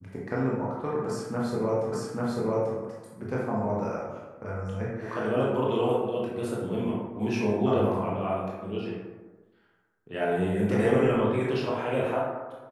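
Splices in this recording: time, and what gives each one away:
0:01.92: the same again, the last 0.84 s

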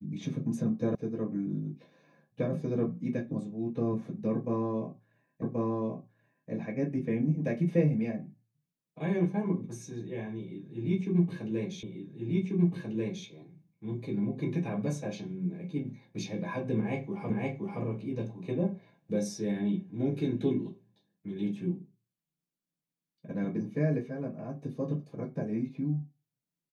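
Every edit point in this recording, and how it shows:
0:00.95: cut off before it has died away
0:05.42: the same again, the last 1.08 s
0:11.83: the same again, the last 1.44 s
0:17.30: the same again, the last 0.52 s

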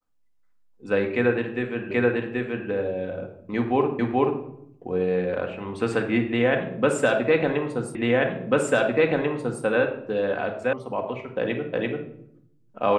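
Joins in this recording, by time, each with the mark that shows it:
0:01.91: the same again, the last 0.78 s
0:03.99: the same again, the last 0.43 s
0:07.95: the same again, the last 1.69 s
0:10.73: cut off before it has died away
0:11.73: the same again, the last 0.34 s

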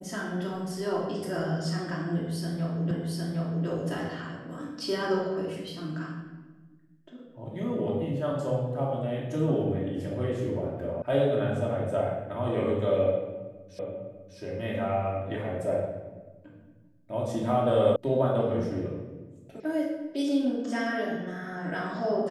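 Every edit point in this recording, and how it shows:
0:02.91: the same again, the last 0.76 s
0:11.02: cut off before it has died away
0:13.79: the same again, the last 0.6 s
0:17.96: cut off before it has died away
0:19.60: cut off before it has died away

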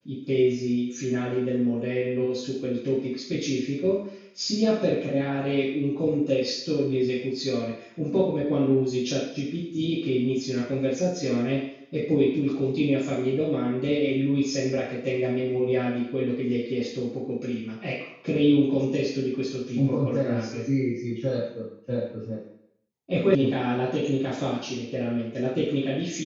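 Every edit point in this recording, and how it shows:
0:23.35: cut off before it has died away

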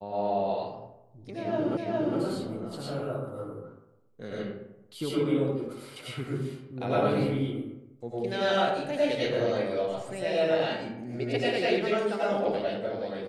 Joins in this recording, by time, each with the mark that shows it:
0:01.77: the same again, the last 0.41 s

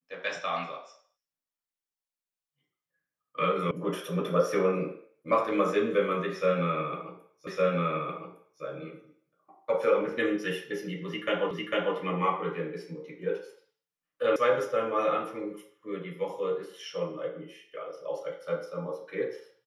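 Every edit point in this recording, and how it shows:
0:03.71: cut off before it has died away
0:07.47: the same again, the last 1.16 s
0:11.51: the same again, the last 0.45 s
0:14.36: cut off before it has died away

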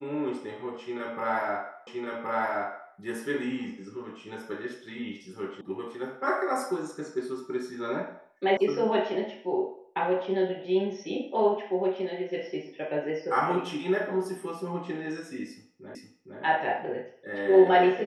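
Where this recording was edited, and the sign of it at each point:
0:01.87: the same again, the last 1.07 s
0:05.61: cut off before it has died away
0:08.57: cut off before it has died away
0:15.95: the same again, the last 0.46 s

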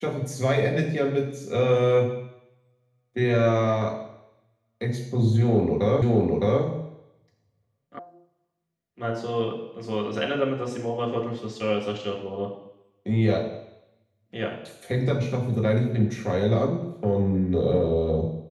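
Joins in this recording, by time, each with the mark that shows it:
0:06.02: the same again, the last 0.61 s
0:07.99: cut off before it has died away

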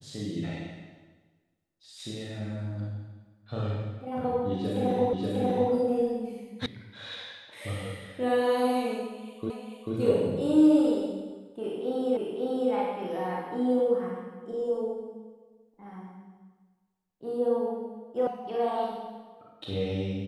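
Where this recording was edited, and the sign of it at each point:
0:05.13: the same again, the last 0.59 s
0:06.66: cut off before it has died away
0:09.50: the same again, the last 0.44 s
0:12.17: the same again, the last 0.55 s
0:18.27: cut off before it has died away

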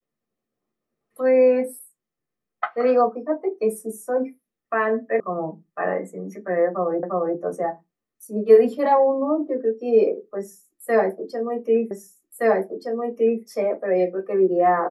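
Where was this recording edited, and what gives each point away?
0:05.20: cut off before it has died away
0:07.03: the same again, the last 0.35 s
0:11.91: the same again, the last 1.52 s

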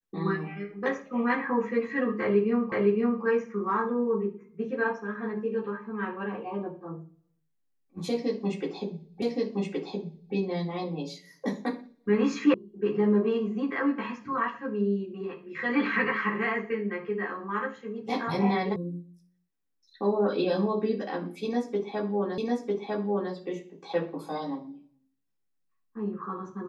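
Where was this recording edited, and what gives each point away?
0:02.72: the same again, the last 0.51 s
0:09.22: the same again, the last 1.12 s
0:12.54: cut off before it has died away
0:18.76: cut off before it has died away
0:22.38: the same again, the last 0.95 s

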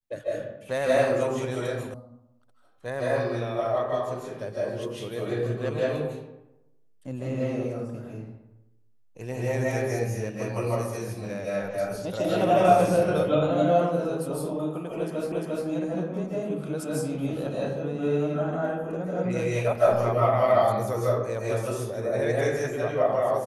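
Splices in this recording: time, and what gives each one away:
0:01.94: cut off before it has died away
0:15.32: the same again, the last 0.35 s

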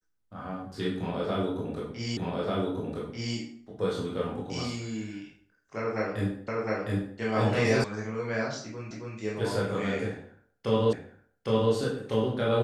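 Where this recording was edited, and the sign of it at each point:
0:02.17: the same again, the last 1.19 s
0:06.48: the same again, the last 0.71 s
0:07.84: cut off before it has died away
0:08.91: the same again, the last 0.27 s
0:10.93: the same again, the last 0.81 s

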